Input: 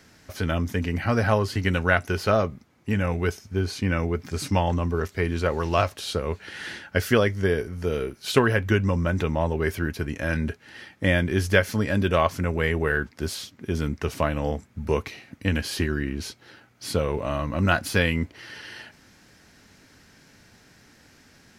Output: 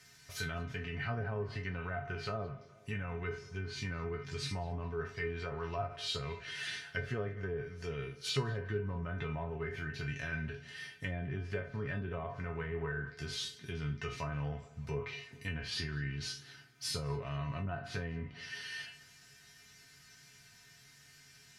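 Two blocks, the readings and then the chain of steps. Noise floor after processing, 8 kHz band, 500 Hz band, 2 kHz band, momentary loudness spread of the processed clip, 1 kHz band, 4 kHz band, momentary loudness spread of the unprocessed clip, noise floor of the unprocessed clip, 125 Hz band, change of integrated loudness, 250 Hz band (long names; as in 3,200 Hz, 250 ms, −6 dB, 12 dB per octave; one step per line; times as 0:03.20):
−60 dBFS, −10.0 dB, −15.5 dB, −13.5 dB, 19 LU, −15.5 dB, −8.0 dB, 11 LU, −56 dBFS, −12.5 dB, −14.0 dB, −17.0 dB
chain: peak hold with a decay on every bin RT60 0.33 s
treble cut that deepens with the level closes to 680 Hz, closed at −17 dBFS
guitar amp tone stack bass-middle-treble 5-5-5
in parallel at +2.5 dB: brickwall limiter −33 dBFS, peak gain reduction 11 dB
on the sum: tuned comb filter 140 Hz, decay 0.2 s, harmonics odd, mix 90%
on a send: tape delay 208 ms, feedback 60%, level −17.5 dB, low-pass 2,200 Hz
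on the sum: level +8 dB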